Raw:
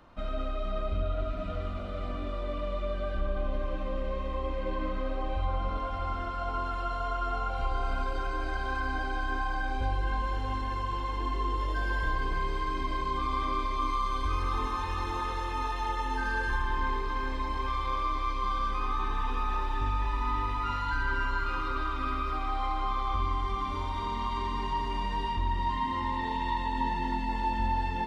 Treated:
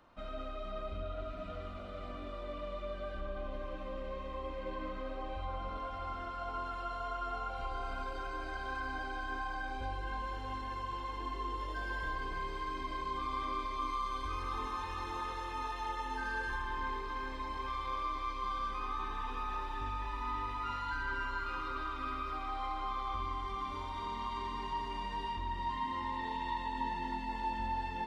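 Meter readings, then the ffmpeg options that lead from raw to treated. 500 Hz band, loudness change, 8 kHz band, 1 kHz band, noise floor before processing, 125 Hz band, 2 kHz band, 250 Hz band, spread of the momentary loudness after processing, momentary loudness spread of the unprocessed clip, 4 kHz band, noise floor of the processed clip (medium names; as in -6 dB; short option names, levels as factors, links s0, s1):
-6.5 dB, -7.0 dB, no reading, -6.0 dB, -33 dBFS, -11.5 dB, -5.5 dB, -8.0 dB, 5 LU, 4 LU, -5.5 dB, -42 dBFS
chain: -af "lowshelf=f=210:g=-6.5,volume=0.531"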